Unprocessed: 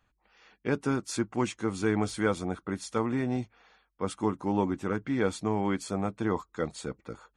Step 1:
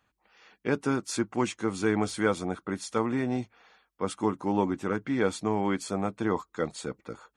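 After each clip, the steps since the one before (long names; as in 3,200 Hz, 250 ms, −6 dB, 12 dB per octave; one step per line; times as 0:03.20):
high-pass filter 140 Hz 6 dB per octave
level +2 dB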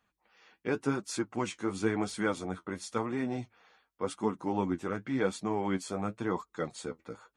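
flanger 0.93 Hz, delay 3.9 ms, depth 9.1 ms, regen +43%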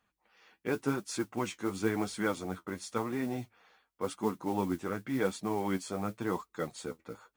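noise that follows the level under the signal 23 dB
level −1 dB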